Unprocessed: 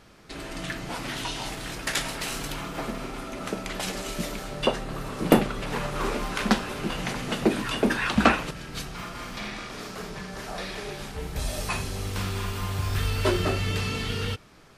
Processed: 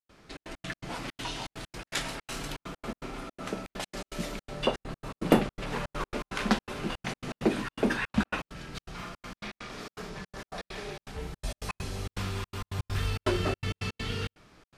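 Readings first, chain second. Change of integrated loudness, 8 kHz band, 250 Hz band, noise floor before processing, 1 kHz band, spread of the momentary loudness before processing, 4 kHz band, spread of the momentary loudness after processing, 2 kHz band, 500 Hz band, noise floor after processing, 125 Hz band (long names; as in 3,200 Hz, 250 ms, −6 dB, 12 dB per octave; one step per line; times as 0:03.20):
−5.0 dB, −7.5 dB, −4.5 dB, −41 dBFS, −6.0 dB, 13 LU, −6.0 dB, 12 LU, −6.0 dB, −4.5 dB, below −85 dBFS, −5.0 dB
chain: high-shelf EQ 12,000 Hz −11 dB
gate pattern ".xxx.x.x.xxx" 164 BPM −60 dB
level −3.5 dB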